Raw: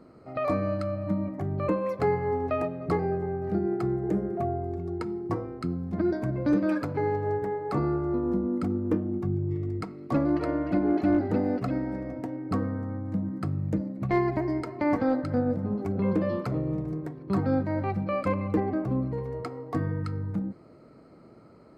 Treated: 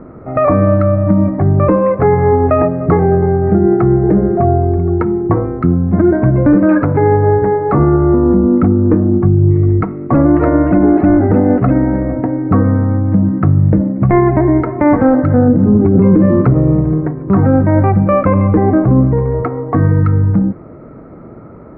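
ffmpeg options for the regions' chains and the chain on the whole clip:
-filter_complex "[0:a]asettb=1/sr,asplit=3[s0][s1][s2];[s0]atrim=end=15.484[s3];[s1]atrim=start=15.48:end=16.54,asetpts=PTS-STARTPTS,afade=t=in:d=0.004:c=qsin,afade=t=out:st=1.056:d=0.004:c=qsin,lowshelf=f=450:t=q:w=1.5:g=6,bandreject=f=50:t=h:w=6,bandreject=f=100:t=h:w=6,bandreject=f=150:t=h:w=6,bandreject=f=200:t=h:w=6[s4];[s2]atrim=start=16.536[s5];[s3][s4]acrossfade=d=0.004:c1=hsin:c2=qsin[s6];[s6][s5]acrossfade=d=0.004:c1=qsin:c2=hsin,lowpass=f=1900:w=0.5412,lowpass=f=1900:w=1.3066,lowshelf=f=86:g=10,alimiter=level_in=7.94:limit=0.891:release=50:level=0:latency=1,volume=0.891"

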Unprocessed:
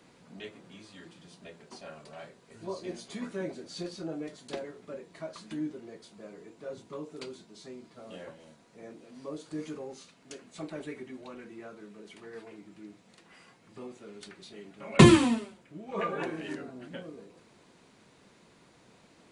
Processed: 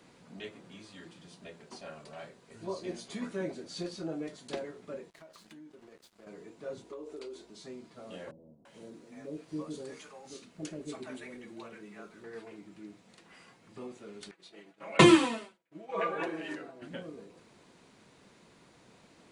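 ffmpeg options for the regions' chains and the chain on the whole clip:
-filter_complex "[0:a]asettb=1/sr,asplit=3[s0][s1][s2];[s0]atrim=end=5.104[s3];[s1]atrim=start=5.1:end=6.27,asetpts=PTS-STARTPTS,afade=t=in:d=0.004:c=qsin,afade=t=out:st=1.166:d=0.004:c=qsin,lowshelf=f=230:g=-6.5,aeval=exprs='sgn(val(0))*max(abs(val(0))-0.00168,0)':c=same,acompressor=threshold=0.00316:ratio=5:attack=3.2:release=140:knee=1:detection=peak[s4];[s2]atrim=start=6.266[s5];[s3][s4]acrossfade=d=0.004:c1=hsin:c2=qsin[s6];[s6][s5]acrossfade=d=0.004:c1=qsin:c2=hsin,asettb=1/sr,asplit=3[s7][s8][s9];[s7]atrim=end=6.844[s10];[s8]atrim=start=6.84:end=7.5,asetpts=PTS-STARTPTS,afade=t=in:d=0.004:c=qsin,afade=t=out:st=0.656:d=0.004:c=qsin,highpass=f=380:t=q:w=2.2,acompressor=threshold=0.0112:ratio=12:attack=3.2:release=140:knee=1:detection=peak,aeval=exprs='val(0)+0.000224*(sin(2*PI*60*n/s)+sin(2*PI*2*60*n/s)/2+sin(2*PI*3*60*n/s)/3+sin(2*PI*4*60*n/s)/4+sin(2*PI*5*60*n/s)/5)':c=same[s11];[s9]atrim=start=7.496[s12];[s10][s11]acrossfade=d=0.004:c1=hsin:c2=qsin[s13];[s13][s12]acrossfade=d=0.004:c1=qsin:c2=hsin,asettb=1/sr,asplit=3[s14][s15][s16];[s14]atrim=end=8.314[s17];[s15]atrim=start=8.31:end=12.24,asetpts=PTS-STARTPTS,afade=t=in:d=0.004:c=qsin,afade=t=out:st=3.926:d=0.004:c=qsin,highshelf=f=9200:g=4,acrossover=split=600[s18][s19];[s19]adelay=340[s20];[s18][s20]amix=inputs=2:normalize=0,atrim=end_sample=173313[s21];[s16]atrim=start=12.236[s22];[s17][s21]acrossfade=d=0.004:c1=hsin:c2=qsin[s23];[s23][s22]acrossfade=d=0.004:c1=qsin:c2=hsin,asettb=1/sr,asplit=3[s24][s25][s26];[s24]atrim=end=14.314[s27];[s25]atrim=start=14.31:end=16.82,asetpts=PTS-STARTPTS,afade=t=in:d=0.004:c=qsin,afade=t=out:st=2.506:d=0.004:c=qsin,aecho=1:1:6.1:0.52,atrim=end_sample=110691,agate=range=0.0224:threshold=0.00562:ratio=3:release=100:detection=peak,bass=f=250:g=-13,treble=f=4000:g=-4[s28];[s26]atrim=start=16.816[s29];[s27][s28]acrossfade=d=0.004:c1=hsin:c2=qsin[s30];[s30][s29]acrossfade=d=0.004:c1=qsin:c2=hsin"

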